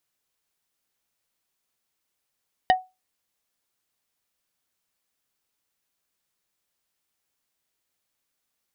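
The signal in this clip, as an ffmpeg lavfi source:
ffmpeg -f lavfi -i "aevalsrc='0.282*pow(10,-3*t/0.23)*sin(2*PI*744*t)+0.158*pow(10,-3*t/0.077)*sin(2*PI*1860*t)+0.0891*pow(10,-3*t/0.044)*sin(2*PI*2976*t)+0.0501*pow(10,-3*t/0.033)*sin(2*PI*3720*t)+0.0282*pow(10,-3*t/0.024)*sin(2*PI*4836*t)':duration=0.45:sample_rate=44100" out.wav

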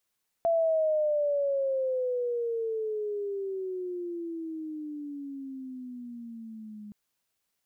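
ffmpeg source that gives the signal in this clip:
ffmpeg -f lavfi -i "aevalsrc='pow(10,(-21.5-19*t/6.47)/20)*sin(2*PI*675*6.47/(-20.5*log(2)/12)*(exp(-20.5*log(2)/12*t/6.47)-1))':duration=6.47:sample_rate=44100" out.wav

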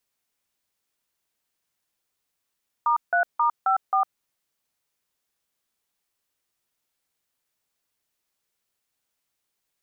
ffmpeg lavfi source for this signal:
ffmpeg -f lavfi -i "aevalsrc='0.0944*clip(min(mod(t,0.267),0.105-mod(t,0.267))/0.002,0,1)*(eq(floor(t/0.267),0)*(sin(2*PI*941*mod(t,0.267))+sin(2*PI*1209*mod(t,0.267)))+eq(floor(t/0.267),1)*(sin(2*PI*697*mod(t,0.267))+sin(2*PI*1477*mod(t,0.267)))+eq(floor(t/0.267),2)*(sin(2*PI*941*mod(t,0.267))+sin(2*PI*1209*mod(t,0.267)))+eq(floor(t/0.267),3)*(sin(2*PI*770*mod(t,0.267))+sin(2*PI*1336*mod(t,0.267)))+eq(floor(t/0.267),4)*(sin(2*PI*770*mod(t,0.267))+sin(2*PI*1209*mod(t,0.267))))':duration=1.335:sample_rate=44100" out.wav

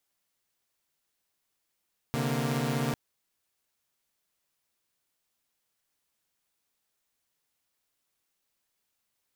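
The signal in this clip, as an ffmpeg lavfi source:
ffmpeg -f lavfi -i "aevalsrc='0.0355*((2*mod(130.81*t,1)-1)+(2*mod(146.83*t,1)-1)+(2*mod(233.08*t,1)-1))':duration=0.8:sample_rate=44100" out.wav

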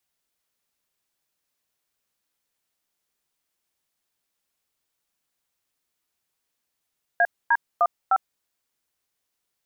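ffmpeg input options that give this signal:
ffmpeg -f lavfi -i "aevalsrc='0.126*clip(min(mod(t,0.304),0.051-mod(t,0.304))/0.002,0,1)*(eq(floor(t/0.304),0)*(sin(2*PI*697*mod(t,0.304))+sin(2*PI*1633*mod(t,0.304)))+eq(floor(t/0.304),1)*(sin(2*PI*941*mod(t,0.304))+sin(2*PI*1633*mod(t,0.304)))+eq(floor(t/0.304),2)*(sin(2*PI*697*mod(t,0.304))+sin(2*PI*1209*mod(t,0.304)))+eq(floor(t/0.304),3)*(sin(2*PI*770*mod(t,0.304))+sin(2*PI*1336*mod(t,0.304))))':duration=1.216:sample_rate=44100" out.wav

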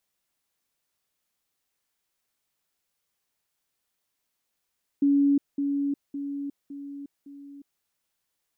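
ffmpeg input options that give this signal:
ffmpeg -f lavfi -i "aevalsrc='pow(10,(-17.5-6*floor(t/0.56))/20)*sin(2*PI*282*t)*clip(min(mod(t,0.56),0.36-mod(t,0.56))/0.005,0,1)':duration=2.8:sample_rate=44100" out.wav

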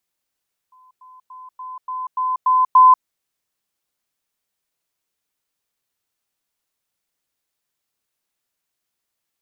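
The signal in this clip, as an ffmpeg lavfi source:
ffmpeg -f lavfi -i "aevalsrc='pow(10,(-48+6*floor(t/0.29))/20)*sin(2*PI*1020*t)*clip(min(mod(t,0.29),0.19-mod(t,0.29))/0.005,0,1)':duration=2.32:sample_rate=44100" out.wav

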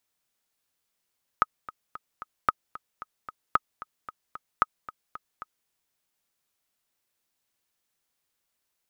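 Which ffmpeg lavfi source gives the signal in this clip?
ffmpeg -f lavfi -i "aevalsrc='pow(10,(-6.5-18*gte(mod(t,4*60/225),60/225))/20)*sin(2*PI*1260*mod(t,60/225))*exp(-6.91*mod(t,60/225)/0.03)':duration=4.26:sample_rate=44100" out.wav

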